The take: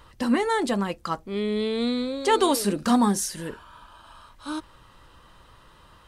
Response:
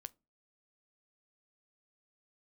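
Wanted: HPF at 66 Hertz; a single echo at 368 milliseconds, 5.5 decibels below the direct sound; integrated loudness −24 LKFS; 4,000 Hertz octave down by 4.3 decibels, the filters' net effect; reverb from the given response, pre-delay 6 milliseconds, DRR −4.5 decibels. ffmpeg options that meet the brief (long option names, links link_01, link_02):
-filter_complex "[0:a]highpass=66,equalizer=frequency=4000:width_type=o:gain=-5.5,aecho=1:1:368:0.531,asplit=2[link_01][link_02];[1:a]atrim=start_sample=2205,adelay=6[link_03];[link_02][link_03]afir=irnorm=-1:irlink=0,volume=10dB[link_04];[link_01][link_04]amix=inputs=2:normalize=0,volume=-4dB"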